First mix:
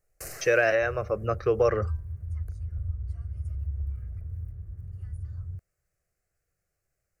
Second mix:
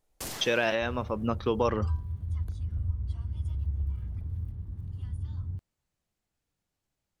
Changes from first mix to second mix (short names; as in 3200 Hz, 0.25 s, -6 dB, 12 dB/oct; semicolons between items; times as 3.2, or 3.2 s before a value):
speech -6.0 dB; master: remove fixed phaser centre 930 Hz, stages 6